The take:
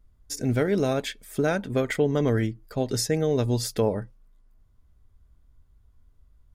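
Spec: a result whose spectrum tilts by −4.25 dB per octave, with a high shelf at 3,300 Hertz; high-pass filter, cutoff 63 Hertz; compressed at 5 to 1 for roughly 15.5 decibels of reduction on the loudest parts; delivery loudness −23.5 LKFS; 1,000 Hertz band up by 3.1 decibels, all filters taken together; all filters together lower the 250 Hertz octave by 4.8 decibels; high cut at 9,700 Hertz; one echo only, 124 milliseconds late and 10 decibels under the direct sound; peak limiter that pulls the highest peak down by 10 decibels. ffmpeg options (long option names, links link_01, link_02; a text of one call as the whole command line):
ffmpeg -i in.wav -af "highpass=63,lowpass=9700,equalizer=frequency=250:width_type=o:gain=-6.5,equalizer=frequency=1000:width_type=o:gain=4,highshelf=frequency=3300:gain=9,acompressor=threshold=-37dB:ratio=5,alimiter=level_in=10dB:limit=-24dB:level=0:latency=1,volume=-10dB,aecho=1:1:124:0.316,volume=19.5dB" out.wav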